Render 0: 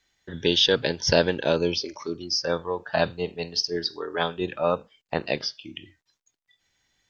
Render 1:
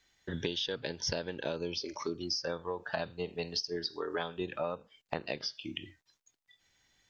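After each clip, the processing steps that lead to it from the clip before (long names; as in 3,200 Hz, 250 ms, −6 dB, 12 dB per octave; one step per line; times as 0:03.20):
downward compressor 16 to 1, threshold −31 dBFS, peak gain reduction 18.5 dB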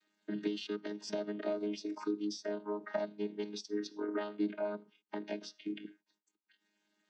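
channel vocoder with a chord as carrier bare fifth, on G#3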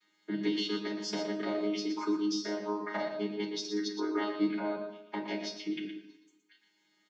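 single-tap delay 118 ms −8.5 dB
convolution reverb RT60 1.0 s, pre-delay 3 ms, DRR −2.5 dB
level −3 dB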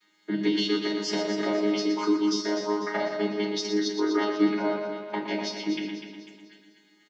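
repeating echo 248 ms, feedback 45%, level −9 dB
level +6 dB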